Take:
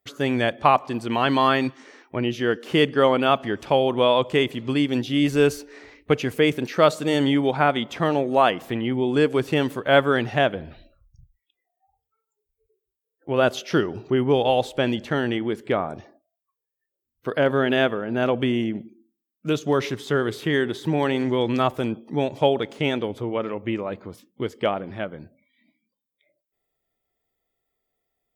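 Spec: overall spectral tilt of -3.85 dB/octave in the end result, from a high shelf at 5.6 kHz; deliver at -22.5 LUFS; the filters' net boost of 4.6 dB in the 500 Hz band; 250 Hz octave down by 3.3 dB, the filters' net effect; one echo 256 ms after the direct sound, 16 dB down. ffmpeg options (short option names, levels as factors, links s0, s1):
-af "equalizer=f=250:t=o:g=-7,equalizer=f=500:t=o:g=7.5,highshelf=f=5600:g=-3.5,aecho=1:1:256:0.158,volume=0.75"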